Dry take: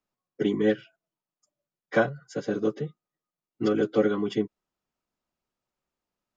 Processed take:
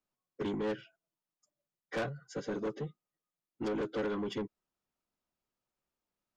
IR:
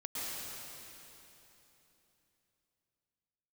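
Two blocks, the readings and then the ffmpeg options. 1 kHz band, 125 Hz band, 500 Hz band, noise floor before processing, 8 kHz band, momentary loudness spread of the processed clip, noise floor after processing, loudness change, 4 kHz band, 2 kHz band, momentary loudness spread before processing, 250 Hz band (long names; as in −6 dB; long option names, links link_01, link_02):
−7.5 dB, −8.0 dB, −10.5 dB, below −85 dBFS, can't be measured, 8 LU, below −85 dBFS, −10.0 dB, −6.5 dB, −10.0 dB, 10 LU, −10.5 dB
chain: -af "asoftclip=type=tanh:threshold=-26.5dB,volume=-4dB"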